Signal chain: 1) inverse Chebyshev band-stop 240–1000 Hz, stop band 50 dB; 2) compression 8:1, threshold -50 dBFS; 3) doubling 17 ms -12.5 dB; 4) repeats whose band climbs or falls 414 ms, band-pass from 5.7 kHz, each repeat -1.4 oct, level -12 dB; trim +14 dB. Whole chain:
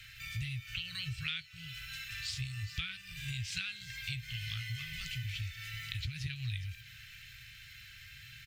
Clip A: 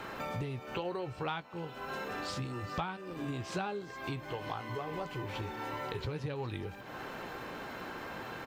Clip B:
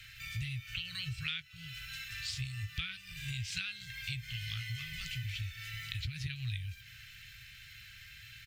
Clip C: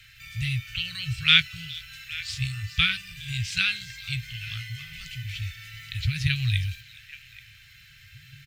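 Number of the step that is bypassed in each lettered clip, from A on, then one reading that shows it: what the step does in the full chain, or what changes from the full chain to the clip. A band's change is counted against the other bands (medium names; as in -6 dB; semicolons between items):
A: 1, 1 kHz band +23.5 dB; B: 4, echo-to-direct -17.0 dB to none; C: 2, mean gain reduction 5.5 dB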